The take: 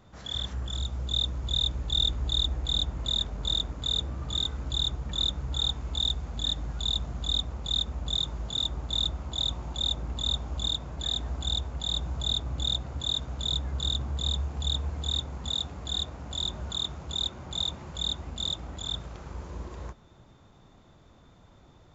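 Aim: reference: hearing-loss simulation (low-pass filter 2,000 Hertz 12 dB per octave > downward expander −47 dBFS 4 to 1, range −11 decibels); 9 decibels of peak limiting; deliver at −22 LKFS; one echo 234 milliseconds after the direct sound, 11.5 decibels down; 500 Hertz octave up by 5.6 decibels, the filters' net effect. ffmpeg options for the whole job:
ffmpeg -i in.wav -af "equalizer=frequency=500:width_type=o:gain=7,alimiter=limit=-23dB:level=0:latency=1,lowpass=2000,aecho=1:1:234:0.266,agate=range=-11dB:threshold=-47dB:ratio=4,volume=14.5dB" out.wav

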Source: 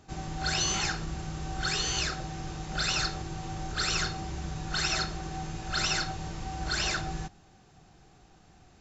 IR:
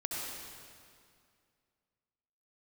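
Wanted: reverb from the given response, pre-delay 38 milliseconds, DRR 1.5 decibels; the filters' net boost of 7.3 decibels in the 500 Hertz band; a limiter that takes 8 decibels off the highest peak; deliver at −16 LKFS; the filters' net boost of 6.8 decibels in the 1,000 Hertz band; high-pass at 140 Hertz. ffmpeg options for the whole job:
-filter_complex "[0:a]highpass=140,equalizer=frequency=500:width_type=o:gain=8.5,equalizer=frequency=1000:width_type=o:gain=6.5,alimiter=limit=-21.5dB:level=0:latency=1,asplit=2[link_01][link_02];[1:a]atrim=start_sample=2205,adelay=38[link_03];[link_02][link_03]afir=irnorm=-1:irlink=0,volume=-5dB[link_04];[link_01][link_04]amix=inputs=2:normalize=0,volume=13.5dB"

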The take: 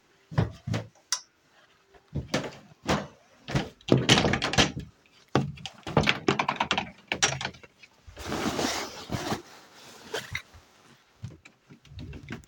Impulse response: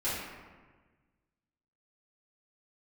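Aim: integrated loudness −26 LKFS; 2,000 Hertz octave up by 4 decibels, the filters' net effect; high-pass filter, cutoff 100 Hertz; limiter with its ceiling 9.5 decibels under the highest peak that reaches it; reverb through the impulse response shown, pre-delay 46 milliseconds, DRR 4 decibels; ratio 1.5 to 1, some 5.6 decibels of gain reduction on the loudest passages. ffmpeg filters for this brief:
-filter_complex "[0:a]highpass=100,equalizer=frequency=2000:width_type=o:gain=5,acompressor=threshold=-30dB:ratio=1.5,alimiter=limit=-15dB:level=0:latency=1,asplit=2[link_01][link_02];[1:a]atrim=start_sample=2205,adelay=46[link_03];[link_02][link_03]afir=irnorm=-1:irlink=0,volume=-11.5dB[link_04];[link_01][link_04]amix=inputs=2:normalize=0,volume=6dB"

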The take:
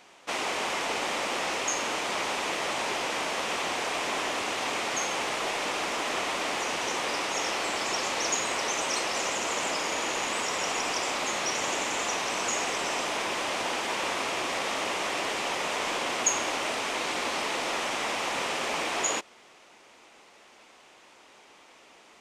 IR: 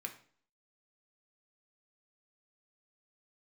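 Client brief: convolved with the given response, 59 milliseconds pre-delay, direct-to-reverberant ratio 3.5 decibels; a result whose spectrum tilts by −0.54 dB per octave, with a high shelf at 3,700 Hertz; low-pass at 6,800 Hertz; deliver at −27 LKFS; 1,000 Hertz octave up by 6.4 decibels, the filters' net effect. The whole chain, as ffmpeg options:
-filter_complex "[0:a]lowpass=6800,equalizer=frequency=1000:width_type=o:gain=7.5,highshelf=frequency=3700:gain=3.5,asplit=2[link_01][link_02];[1:a]atrim=start_sample=2205,adelay=59[link_03];[link_02][link_03]afir=irnorm=-1:irlink=0,volume=-2dB[link_04];[link_01][link_04]amix=inputs=2:normalize=0,volume=-3dB"

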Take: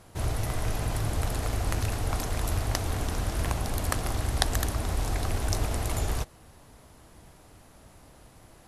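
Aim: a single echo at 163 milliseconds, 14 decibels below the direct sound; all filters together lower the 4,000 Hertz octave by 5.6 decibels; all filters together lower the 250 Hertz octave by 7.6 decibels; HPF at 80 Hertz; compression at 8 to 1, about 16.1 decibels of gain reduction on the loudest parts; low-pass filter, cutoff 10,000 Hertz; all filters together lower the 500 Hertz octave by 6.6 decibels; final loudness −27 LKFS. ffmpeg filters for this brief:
ffmpeg -i in.wav -af "highpass=80,lowpass=10000,equalizer=frequency=250:width_type=o:gain=-9,equalizer=frequency=500:width_type=o:gain=-6.5,equalizer=frequency=4000:width_type=o:gain=-7,acompressor=threshold=-41dB:ratio=8,aecho=1:1:163:0.2,volume=18.5dB" out.wav

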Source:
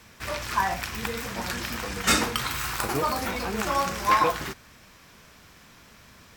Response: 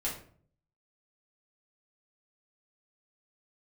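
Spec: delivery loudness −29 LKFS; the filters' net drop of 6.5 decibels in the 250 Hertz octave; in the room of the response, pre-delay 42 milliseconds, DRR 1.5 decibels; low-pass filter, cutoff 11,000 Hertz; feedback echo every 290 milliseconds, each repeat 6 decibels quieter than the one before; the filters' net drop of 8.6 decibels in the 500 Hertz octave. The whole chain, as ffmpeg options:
-filter_complex "[0:a]lowpass=11000,equalizer=frequency=250:width_type=o:gain=-6,equalizer=frequency=500:width_type=o:gain=-9,aecho=1:1:290|580|870|1160|1450|1740:0.501|0.251|0.125|0.0626|0.0313|0.0157,asplit=2[link_01][link_02];[1:a]atrim=start_sample=2205,adelay=42[link_03];[link_02][link_03]afir=irnorm=-1:irlink=0,volume=-5.5dB[link_04];[link_01][link_04]amix=inputs=2:normalize=0,volume=-4dB"

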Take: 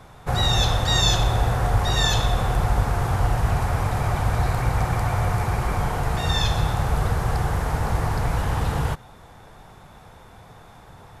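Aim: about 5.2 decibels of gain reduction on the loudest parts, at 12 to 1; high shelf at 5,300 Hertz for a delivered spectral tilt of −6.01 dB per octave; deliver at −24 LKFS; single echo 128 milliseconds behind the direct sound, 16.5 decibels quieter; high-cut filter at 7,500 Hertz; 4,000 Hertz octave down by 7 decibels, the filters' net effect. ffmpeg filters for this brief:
ffmpeg -i in.wav -af "lowpass=7500,equalizer=frequency=4000:width_type=o:gain=-6,highshelf=frequency=5300:gain=-4.5,acompressor=threshold=-21dB:ratio=12,aecho=1:1:128:0.15,volume=3.5dB" out.wav

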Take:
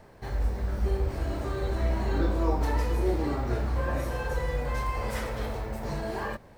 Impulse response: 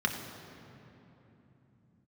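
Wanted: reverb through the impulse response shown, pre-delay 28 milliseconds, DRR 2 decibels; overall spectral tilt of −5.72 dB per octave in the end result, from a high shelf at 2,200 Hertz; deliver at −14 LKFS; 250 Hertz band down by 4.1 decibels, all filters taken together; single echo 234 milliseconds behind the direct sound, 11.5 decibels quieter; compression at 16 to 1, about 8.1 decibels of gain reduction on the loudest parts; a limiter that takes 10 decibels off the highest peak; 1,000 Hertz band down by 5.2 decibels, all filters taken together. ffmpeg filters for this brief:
-filter_complex "[0:a]equalizer=frequency=250:width_type=o:gain=-5.5,equalizer=frequency=1000:width_type=o:gain=-7,highshelf=frequency=2200:gain=4.5,acompressor=threshold=-30dB:ratio=16,alimiter=level_in=9.5dB:limit=-24dB:level=0:latency=1,volume=-9.5dB,aecho=1:1:234:0.266,asplit=2[link_01][link_02];[1:a]atrim=start_sample=2205,adelay=28[link_03];[link_02][link_03]afir=irnorm=-1:irlink=0,volume=-11dB[link_04];[link_01][link_04]amix=inputs=2:normalize=0,volume=26.5dB"

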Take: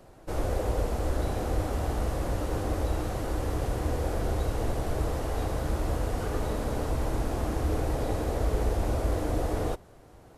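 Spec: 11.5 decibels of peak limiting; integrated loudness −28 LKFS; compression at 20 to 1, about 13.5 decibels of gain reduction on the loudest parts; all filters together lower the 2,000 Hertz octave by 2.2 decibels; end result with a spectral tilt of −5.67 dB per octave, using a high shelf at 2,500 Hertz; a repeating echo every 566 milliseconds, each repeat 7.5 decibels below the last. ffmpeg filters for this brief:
ffmpeg -i in.wav -af "equalizer=frequency=2000:width_type=o:gain=-5.5,highshelf=frequency=2500:gain=5.5,acompressor=threshold=-36dB:ratio=20,alimiter=level_in=14dB:limit=-24dB:level=0:latency=1,volume=-14dB,aecho=1:1:566|1132|1698|2264|2830:0.422|0.177|0.0744|0.0312|0.0131,volume=19dB" out.wav

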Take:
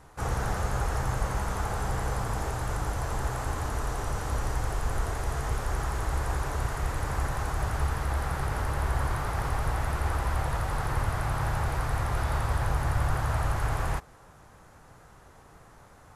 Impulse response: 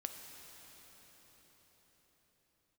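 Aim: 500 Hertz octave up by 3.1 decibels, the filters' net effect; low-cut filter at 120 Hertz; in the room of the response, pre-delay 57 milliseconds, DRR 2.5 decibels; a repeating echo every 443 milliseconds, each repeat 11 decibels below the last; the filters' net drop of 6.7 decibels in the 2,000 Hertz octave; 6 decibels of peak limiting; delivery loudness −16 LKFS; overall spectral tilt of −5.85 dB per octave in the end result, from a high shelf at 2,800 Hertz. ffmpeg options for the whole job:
-filter_complex "[0:a]highpass=120,equalizer=frequency=500:width_type=o:gain=4.5,equalizer=frequency=2000:width_type=o:gain=-8.5,highshelf=frequency=2800:gain=-3.5,alimiter=level_in=1.5dB:limit=-24dB:level=0:latency=1,volume=-1.5dB,aecho=1:1:443|886|1329:0.282|0.0789|0.0221,asplit=2[link_01][link_02];[1:a]atrim=start_sample=2205,adelay=57[link_03];[link_02][link_03]afir=irnorm=-1:irlink=0,volume=-1dB[link_04];[link_01][link_04]amix=inputs=2:normalize=0,volume=17dB"

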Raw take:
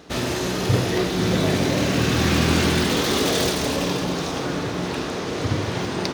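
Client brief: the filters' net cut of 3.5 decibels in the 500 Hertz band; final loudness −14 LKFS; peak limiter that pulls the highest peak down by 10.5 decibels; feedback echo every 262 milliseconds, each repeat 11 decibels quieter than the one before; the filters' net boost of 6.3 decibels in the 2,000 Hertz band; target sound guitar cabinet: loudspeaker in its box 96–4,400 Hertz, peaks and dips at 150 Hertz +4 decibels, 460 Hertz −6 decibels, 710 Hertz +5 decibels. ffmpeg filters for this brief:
ffmpeg -i in.wav -af "equalizer=frequency=500:width_type=o:gain=-3.5,equalizer=frequency=2000:width_type=o:gain=8,alimiter=limit=-14.5dB:level=0:latency=1,highpass=96,equalizer=frequency=150:width_type=q:width=4:gain=4,equalizer=frequency=460:width_type=q:width=4:gain=-6,equalizer=frequency=710:width_type=q:width=4:gain=5,lowpass=frequency=4400:width=0.5412,lowpass=frequency=4400:width=1.3066,aecho=1:1:262|524|786:0.282|0.0789|0.0221,volume=9.5dB" out.wav

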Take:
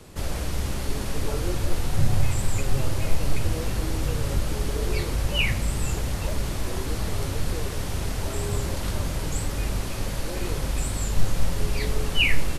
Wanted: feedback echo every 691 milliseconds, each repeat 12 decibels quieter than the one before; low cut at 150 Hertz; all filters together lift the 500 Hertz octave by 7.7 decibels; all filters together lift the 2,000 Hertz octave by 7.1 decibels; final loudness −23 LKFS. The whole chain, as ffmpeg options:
ffmpeg -i in.wav -af "highpass=150,equalizer=frequency=500:width_type=o:gain=9,equalizer=frequency=2000:width_type=o:gain=8.5,aecho=1:1:691|1382|2073:0.251|0.0628|0.0157,volume=3dB" out.wav

